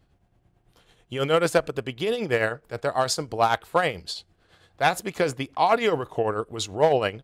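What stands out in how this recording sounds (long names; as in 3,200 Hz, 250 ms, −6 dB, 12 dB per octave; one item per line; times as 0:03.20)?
tremolo triangle 9.1 Hz, depth 65%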